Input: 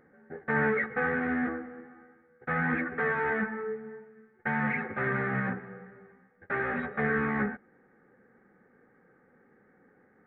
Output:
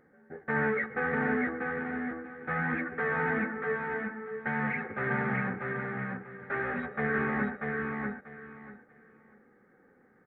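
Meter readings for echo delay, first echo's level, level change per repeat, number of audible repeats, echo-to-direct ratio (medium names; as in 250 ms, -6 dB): 639 ms, -3.5 dB, -13.5 dB, 3, -3.5 dB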